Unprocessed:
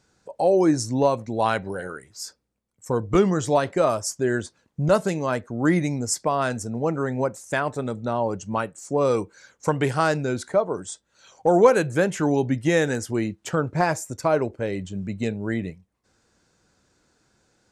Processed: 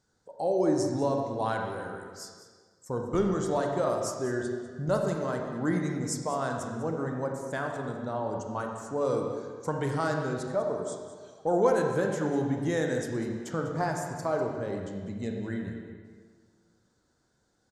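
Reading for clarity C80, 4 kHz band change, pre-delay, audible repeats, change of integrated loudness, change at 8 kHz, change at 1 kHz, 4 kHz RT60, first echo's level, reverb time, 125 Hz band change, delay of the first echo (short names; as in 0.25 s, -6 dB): 4.0 dB, -9.0 dB, 26 ms, 1, -7.0 dB, -8.5 dB, -7.0 dB, 1.4 s, -13.0 dB, 1.7 s, -6.5 dB, 0.198 s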